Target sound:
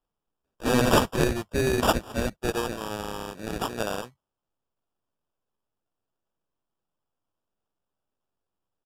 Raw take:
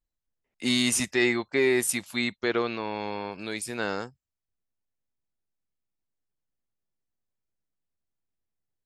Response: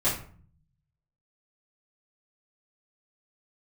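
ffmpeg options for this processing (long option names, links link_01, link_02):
-af "equalizer=frequency=5900:width=0.69:gain=14,acrusher=samples=21:mix=1:aa=0.000001,aresample=32000,aresample=44100,volume=-2.5dB"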